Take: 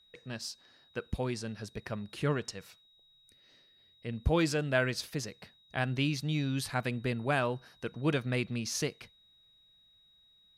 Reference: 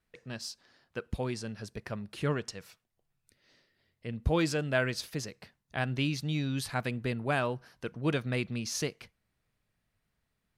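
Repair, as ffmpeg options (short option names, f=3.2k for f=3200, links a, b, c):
-af "bandreject=f=3.8k:w=30"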